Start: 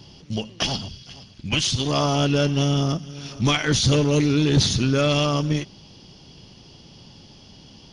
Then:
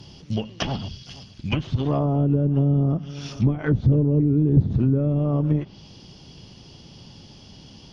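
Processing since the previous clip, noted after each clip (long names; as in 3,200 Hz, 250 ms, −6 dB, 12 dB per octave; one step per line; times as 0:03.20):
treble cut that deepens with the level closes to 370 Hz, closed at −15.5 dBFS
parametric band 89 Hz +3 dB 2.6 octaves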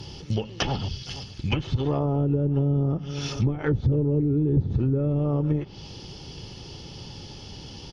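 comb filter 2.3 ms, depth 39%
downward compressor 2 to 1, threshold −31 dBFS, peak gain reduction 10.5 dB
level +5 dB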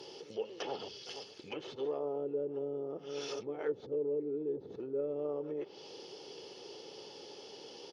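brickwall limiter −22.5 dBFS, peak gain reduction 10.5 dB
high-pass with resonance 440 Hz, resonance Q 3.4
level −8.5 dB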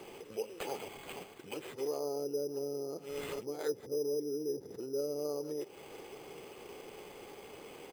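bad sample-rate conversion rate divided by 8×, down none, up hold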